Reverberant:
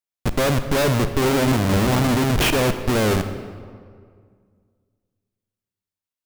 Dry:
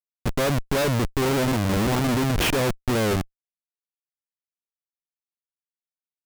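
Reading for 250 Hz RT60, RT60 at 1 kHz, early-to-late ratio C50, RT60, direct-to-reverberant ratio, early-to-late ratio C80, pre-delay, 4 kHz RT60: 2.3 s, 1.9 s, 10.0 dB, 2.0 s, 9.5 dB, 11.0 dB, 34 ms, 1.2 s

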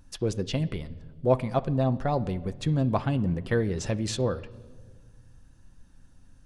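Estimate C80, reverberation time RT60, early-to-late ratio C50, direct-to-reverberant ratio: 20.0 dB, no single decay rate, 18.0 dB, 9.0 dB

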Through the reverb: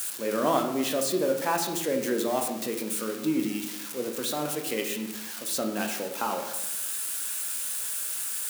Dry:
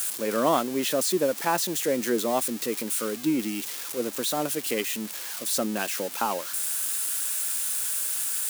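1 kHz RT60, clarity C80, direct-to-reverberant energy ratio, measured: 0.85 s, 9.0 dB, 3.0 dB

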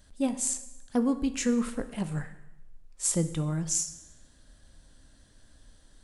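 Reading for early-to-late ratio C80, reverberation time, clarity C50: 15.0 dB, 0.95 s, 13.0 dB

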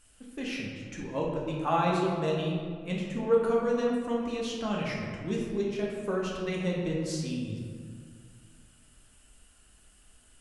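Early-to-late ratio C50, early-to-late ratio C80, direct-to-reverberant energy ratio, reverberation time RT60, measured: 0.5 dB, 2.5 dB, -3.5 dB, 2.0 s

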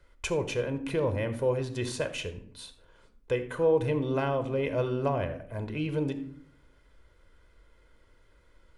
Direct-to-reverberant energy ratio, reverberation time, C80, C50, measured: 9.0 dB, 0.65 s, 14.5 dB, 12.0 dB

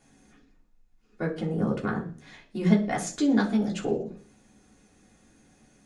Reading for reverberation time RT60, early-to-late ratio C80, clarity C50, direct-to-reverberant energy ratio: 0.45 s, 16.5 dB, 12.0 dB, -4.5 dB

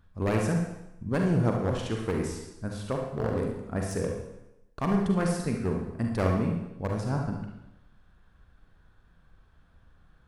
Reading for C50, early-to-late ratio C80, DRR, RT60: 2.5 dB, 6.5 dB, 0.5 dB, 0.85 s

